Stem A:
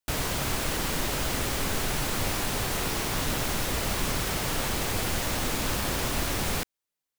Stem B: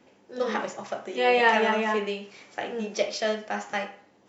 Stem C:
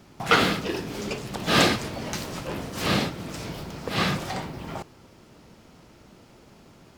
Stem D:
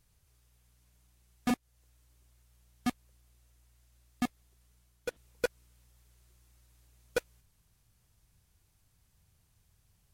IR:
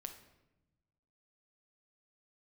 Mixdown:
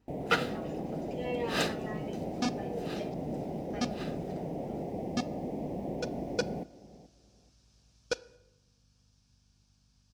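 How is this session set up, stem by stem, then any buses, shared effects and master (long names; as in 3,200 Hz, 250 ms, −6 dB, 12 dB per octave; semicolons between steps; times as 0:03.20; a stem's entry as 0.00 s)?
−14.0 dB, 0.00 s, no send, echo send −17.5 dB, drawn EQ curve 110 Hz 0 dB, 160 Hz +13 dB, 740 Hz +11 dB, 1,400 Hz −29 dB, 2,000 Hz −11 dB, 4,400 Hz −24 dB; bit reduction 10 bits
−2.5 dB, 0.00 s, muted 0:03.14–0:03.70, no send, no echo send, tilt shelving filter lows +6 dB, about 660 Hz; tuned comb filter 160 Hz, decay 0.21 s, harmonics all, mix 90%; barber-pole flanger 4.7 ms −0.68 Hz
−5.0 dB, 0.00 s, no send, no echo send, low-shelf EQ 150 Hz −8.5 dB; notch comb filter 1,100 Hz; expander for the loud parts 2.5 to 1, over −28 dBFS
−4.5 dB, 0.95 s, send −3.5 dB, no echo send, low-pass with resonance 5,400 Hz, resonance Q 3.5; notch filter 2,000 Hz, Q 5.6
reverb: on, RT60 1.0 s, pre-delay 6 ms
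echo: repeating echo 430 ms, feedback 22%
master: mains hum 50 Hz, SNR 31 dB; high-pass filter 52 Hz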